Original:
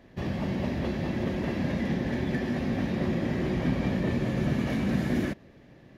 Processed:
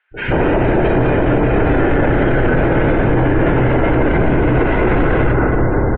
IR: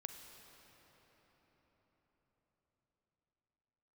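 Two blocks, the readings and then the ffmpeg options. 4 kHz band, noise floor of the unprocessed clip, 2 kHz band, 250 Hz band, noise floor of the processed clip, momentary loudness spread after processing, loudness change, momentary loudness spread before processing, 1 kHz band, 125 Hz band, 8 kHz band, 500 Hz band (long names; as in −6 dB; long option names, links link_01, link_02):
+7.5 dB, −54 dBFS, +17.5 dB, +11.5 dB, −18 dBFS, 1 LU, +14.5 dB, 3 LU, +20.5 dB, +14.0 dB, can't be measured, +18.5 dB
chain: -filter_complex "[0:a]highpass=frequency=130:width=0.5412,highpass=frequency=130:width=1.3066,equalizer=frequency=800:width_type=o:width=2.7:gain=12.5,acrossover=split=400|1900[link_01][link_02][link_03];[link_01]adelay=110[link_04];[link_02]adelay=140[link_05];[link_04][link_05][link_03]amix=inputs=3:normalize=0,acontrast=46[link_06];[1:a]atrim=start_sample=2205[link_07];[link_06][link_07]afir=irnorm=-1:irlink=0,afftdn=noise_reduction=24:noise_floor=-47,highpass=frequency=240:width_type=q:width=0.5412,highpass=frequency=240:width_type=q:width=1.307,lowpass=frequency=3100:width_type=q:width=0.5176,lowpass=frequency=3100:width_type=q:width=0.7071,lowpass=frequency=3100:width_type=q:width=1.932,afreqshift=-240,alimiter=level_in=25.5dB:limit=-1dB:release=50:level=0:latency=1,volume=-5dB"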